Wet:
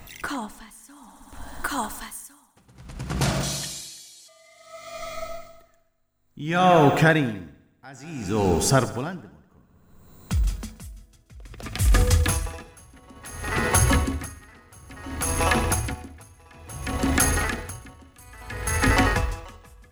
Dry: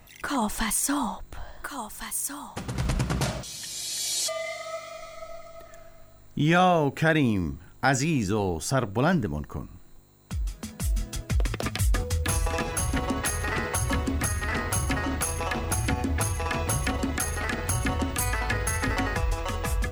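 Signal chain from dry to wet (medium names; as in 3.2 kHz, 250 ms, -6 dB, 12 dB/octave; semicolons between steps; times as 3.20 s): band-stop 600 Hz, Q 12; multi-head delay 64 ms, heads all three, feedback 56%, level -17 dB; logarithmic tremolo 0.58 Hz, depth 31 dB; trim +8 dB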